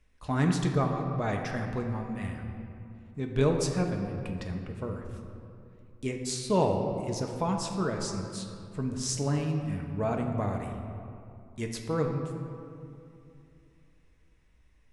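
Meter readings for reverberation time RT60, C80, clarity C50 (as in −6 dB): 2.7 s, 5.5 dB, 4.5 dB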